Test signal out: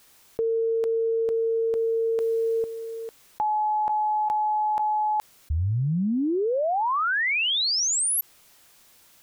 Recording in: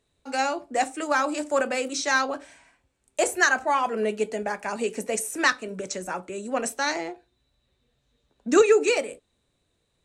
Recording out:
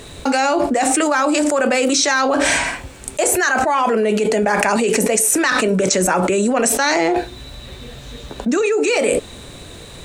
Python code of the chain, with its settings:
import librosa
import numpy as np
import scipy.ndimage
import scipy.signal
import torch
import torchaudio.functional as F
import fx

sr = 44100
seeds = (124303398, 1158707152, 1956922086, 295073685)

y = fx.env_flatten(x, sr, amount_pct=100)
y = y * librosa.db_to_amplitude(-3.5)